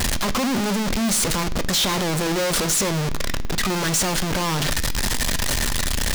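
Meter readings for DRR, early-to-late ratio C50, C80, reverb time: 11.0 dB, 18.5 dB, 21.5 dB, 0.65 s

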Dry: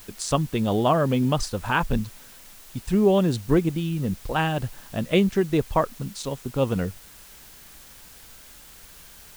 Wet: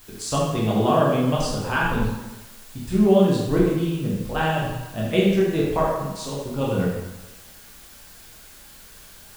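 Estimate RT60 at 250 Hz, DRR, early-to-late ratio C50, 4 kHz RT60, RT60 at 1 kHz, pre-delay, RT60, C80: 1.0 s, -5.5 dB, 0.5 dB, 0.90 s, 1.1 s, 9 ms, 1.1 s, 3.0 dB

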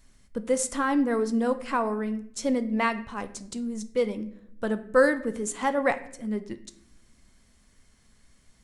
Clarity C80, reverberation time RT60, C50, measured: 17.5 dB, 0.70 s, 14.5 dB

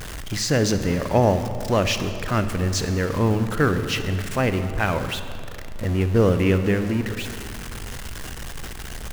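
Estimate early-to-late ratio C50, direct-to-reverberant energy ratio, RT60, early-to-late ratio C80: 9.5 dB, 9.0 dB, 2.6 s, 10.5 dB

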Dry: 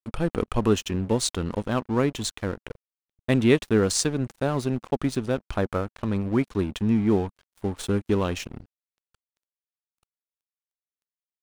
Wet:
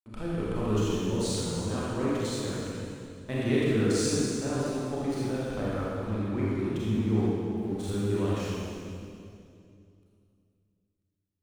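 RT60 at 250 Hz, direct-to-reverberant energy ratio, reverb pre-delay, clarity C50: 3.1 s, -8.0 dB, 29 ms, -5.0 dB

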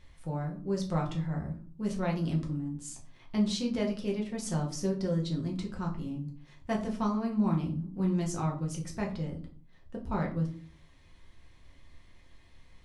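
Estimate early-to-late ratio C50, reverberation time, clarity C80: 10.5 dB, 0.45 s, 15.5 dB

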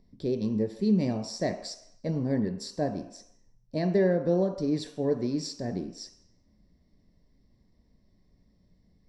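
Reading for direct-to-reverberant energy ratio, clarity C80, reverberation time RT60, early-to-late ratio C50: 5.5 dB, 12.5 dB, 0.75 s, 10.0 dB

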